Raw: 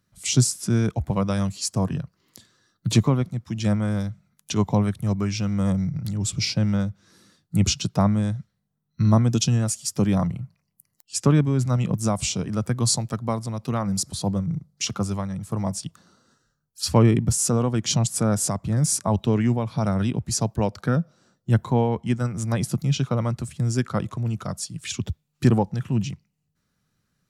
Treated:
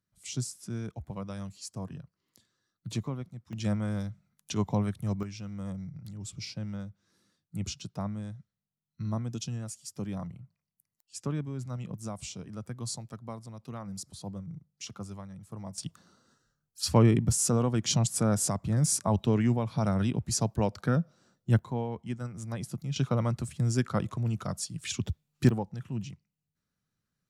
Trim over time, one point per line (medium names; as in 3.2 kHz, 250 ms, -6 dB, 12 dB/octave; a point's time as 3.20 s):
-15 dB
from 3.53 s -7.5 dB
from 5.23 s -15 dB
from 15.78 s -4.5 dB
from 21.59 s -12 dB
from 22.96 s -4 dB
from 25.49 s -11.5 dB